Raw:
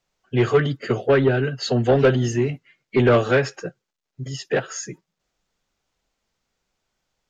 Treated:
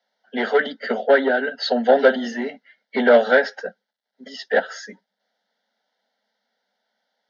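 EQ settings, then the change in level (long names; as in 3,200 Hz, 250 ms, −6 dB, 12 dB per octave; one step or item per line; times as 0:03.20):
Butterworth high-pass 200 Hz 96 dB per octave
high-frequency loss of the air 120 metres
phaser with its sweep stopped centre 1,700 Hz, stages 8
+7.5 dB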